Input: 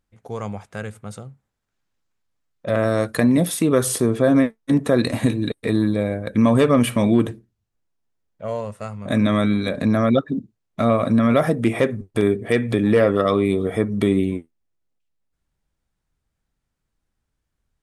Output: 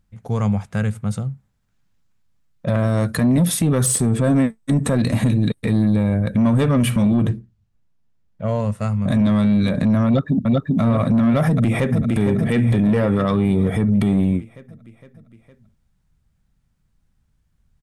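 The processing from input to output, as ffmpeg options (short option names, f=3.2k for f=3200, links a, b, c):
-filter_complex "[0:a]asettb=1/sr,asplit=3[a][b][c];[a]atrim=end=3.864[d];[b]atrim=start=3.86:end=4.97,asetpts=PTS-STARTPTS,afade=t=in:d=0.004:c=qsin,afade=t=out:st=1.106:d=0.004:c=qsin,equalizer=f=8.1k:w=7.4:g=14.5[e];[c]atrim=start=4.966[f];[d][e]acrossfade=d=0.004:c1=hsin:c2=qsin[g];[g][f]acrossfade=d=0.004:c1=qsin:c2=hsin,asettb=1/sr,asplit=3[h][i][j];[h]atrim=end=7.144[k];[i]atrim=start=7.14:end=8.6,asetpts=PTS-STARTPTS,afade=t=in:d=0.004:c=qsin,afade=t=out:st=1.456:d=0.004:c=qsin,highshelf=f=7.8k:g=-10[l];[j]atrim=start=8.596[m];[k][l]acrossfade=d=0.004:c1=hsin:c2=qsin[n];[n][m]acrossfade=d=0.004:c1=qsin:c2=hsin,asplit=2[o][p];[p]afade=t=in:st=10.06:d=0.01,afade=t=out:st=10.81:d=0.01,aecho=0:1:390|780|1170|1560|1950|2340|2730|3120:0.749894|0.412442|0.226843|0.124764|0.06862|0.037741|0.0207576|0.0114167[q];[o][q]amix=inputs=2:normalize=0,asplit=2[r][s];[s]afade=t=in:st=11.46:d=0.01,afade=t=out:st=12.06:d=0.01,aecho=0:1:460|920|1380|1840|2300|2760|3220|3680:0.446684|0.26801|0.160806|0.0964837|0.0578902|0.0347341|0.0208405|0.0125043[t];[r][t]amix=inputs=2:normalize=0,lowshelf=f=250:t=q:w=1.5:g=8,acontrast=73,alimiter=limit=-8.5dB:level=0:latency=1:release=72,volume=-2.5dB"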